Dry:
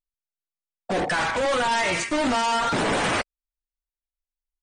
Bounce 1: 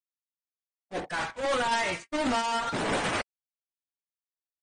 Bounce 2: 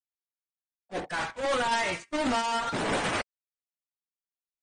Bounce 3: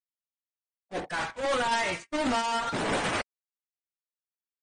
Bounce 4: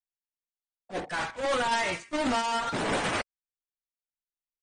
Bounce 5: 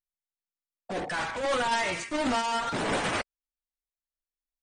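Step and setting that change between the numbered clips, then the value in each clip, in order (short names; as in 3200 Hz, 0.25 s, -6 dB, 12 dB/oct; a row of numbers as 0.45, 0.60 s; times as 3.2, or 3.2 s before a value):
gate, range: -59, -34, -47, -21, -9 dB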